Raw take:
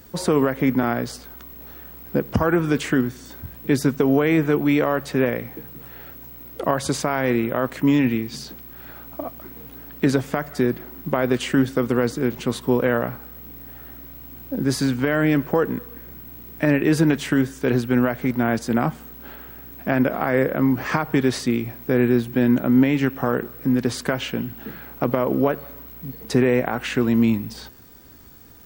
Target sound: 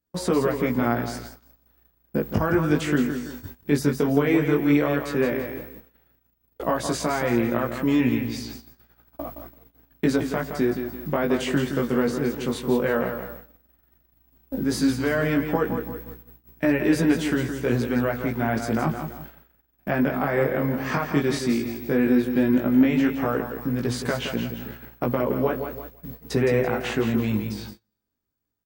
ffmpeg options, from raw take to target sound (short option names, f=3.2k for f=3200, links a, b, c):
-af "aecho=1:1:168|336|504|672:0.398|0.155|0.0606|0.0236,flanger=delay=16.5:depth=4.5:speed=0.12,agate=range=-33dB:threshold=-37dB:ratio=16:detection=peak"